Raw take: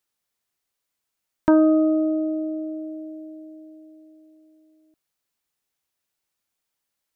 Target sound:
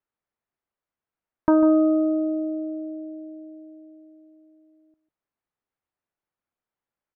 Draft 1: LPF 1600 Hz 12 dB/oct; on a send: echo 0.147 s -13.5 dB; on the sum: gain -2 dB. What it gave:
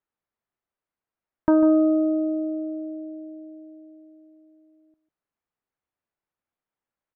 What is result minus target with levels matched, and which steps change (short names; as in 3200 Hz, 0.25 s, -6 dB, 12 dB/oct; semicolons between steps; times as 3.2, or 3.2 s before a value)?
1000 Hz band -3.0 dB
add after LPF: dynamic EQ 1100 Hz, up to +7 dB, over -45 dBFS, Q 3.7